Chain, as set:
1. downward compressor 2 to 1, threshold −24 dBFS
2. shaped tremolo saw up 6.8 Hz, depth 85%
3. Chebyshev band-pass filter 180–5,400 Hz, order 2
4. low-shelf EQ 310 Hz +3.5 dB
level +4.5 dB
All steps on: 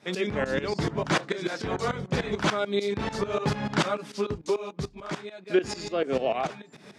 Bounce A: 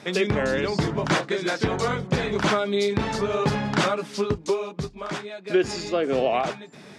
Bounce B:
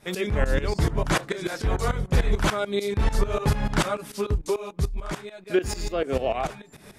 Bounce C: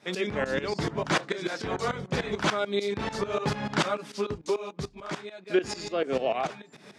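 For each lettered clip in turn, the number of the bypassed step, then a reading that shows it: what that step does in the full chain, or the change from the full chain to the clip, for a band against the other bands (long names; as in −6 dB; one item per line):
2, change in integrated loudness +4.0 LU
3, 125 Hz band +6.0 dB
4, 125 Hz band −2.5 dB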